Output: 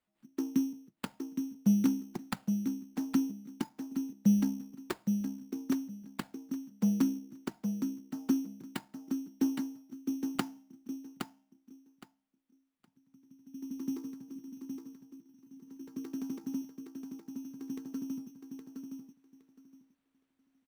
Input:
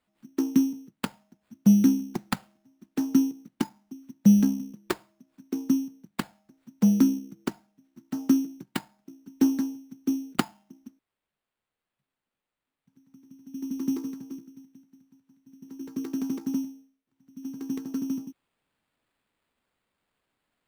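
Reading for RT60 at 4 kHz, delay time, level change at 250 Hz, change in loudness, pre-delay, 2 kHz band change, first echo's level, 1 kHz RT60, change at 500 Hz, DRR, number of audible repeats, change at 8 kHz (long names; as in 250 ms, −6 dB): no reverb audible, 816 ms, −7.0 dB, −8.5 dB, no reverb audible, −7.0 dB, −6.0 dB, no reverb audible, −7.0 dB, no reverb audible, 2, −7.0 dB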